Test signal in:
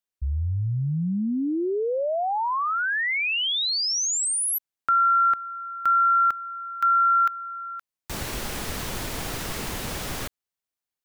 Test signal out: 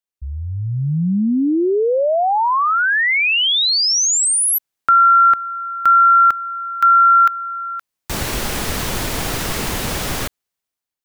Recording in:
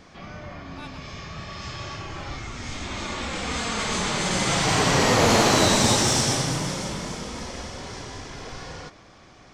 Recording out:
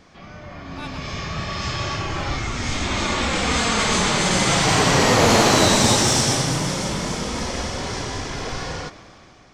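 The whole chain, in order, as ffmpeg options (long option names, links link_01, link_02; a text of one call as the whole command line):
ffmpeg -i in.wav -af "dynaudnorm=framelen=230:gausssize=7:maxgain=10.5dB,volume=-1.5dB" out.wav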